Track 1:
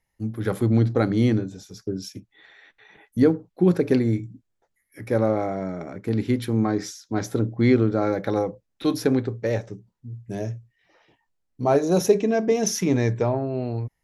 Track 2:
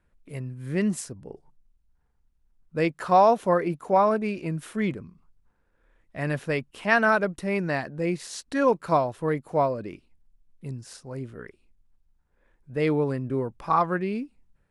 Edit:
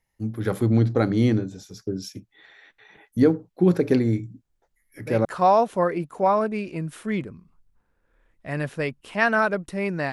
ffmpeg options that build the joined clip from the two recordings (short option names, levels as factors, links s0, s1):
-filter_complex "[1:a]asplit=2[s0][s1];[0:a]apad=whole_dur=10.12,atrim=end=10.12,atrim=end=5.252[s2];[s1]atrim=start=2.948:end=7.82[s3];[s0]atrim=start=2.15:end=2.95,asetpts=PTS-STARTPTS,volume=0.376,afade=t=in:d=0.004:c=hsin,afade=t=out:st=0.796:d=0.004:c=hsin,adelay=196245S[s4];[s2][s3]acrossfade=d=0.004:c1=hsin:c2=hsin[s5];[s5][s4]amix=inputs=2:normalize=0"